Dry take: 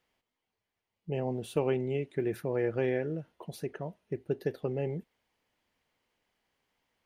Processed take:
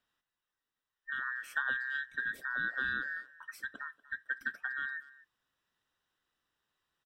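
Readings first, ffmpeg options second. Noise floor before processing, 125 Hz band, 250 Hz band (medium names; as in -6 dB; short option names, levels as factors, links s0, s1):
under -85 dBFS, -27.0 dB, -21.0 dB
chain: -filter_complex "[0:a]afftfilt=real='real(if(between(b,1,1012),(2*floor((b-1)/92)+1)*92-b,b),0)':imag='imag(if(between(b,1,1012),(2*floor((b-1)/92)+1)*92-b,b),0)*if(between(b,1,1012),-1,1)':win_size=2048:overlap=0.75,asplit=2[s0][s1];[s1]adelay=240,highpass=300,lowpass=3400,asoftclip=type=hard:threshold=0.0596,volume=0.112[s2];[s0][s2]amix=inputs=2:normalize=0,volume=0.562"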